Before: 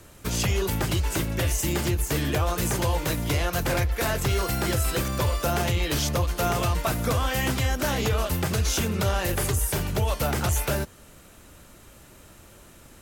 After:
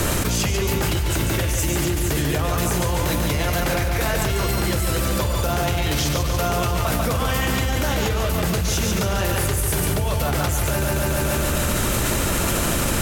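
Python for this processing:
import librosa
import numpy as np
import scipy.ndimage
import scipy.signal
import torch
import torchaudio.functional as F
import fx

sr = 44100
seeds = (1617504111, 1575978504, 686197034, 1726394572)

y = fx.echo_feedback(x, sr, ms=143, feedback_pct=56, wet_db=-4.5)
y = fx.env_flatten(y, sr, amount_pct=100)
y = y * 10.0 ** (-2.0 / 20.0)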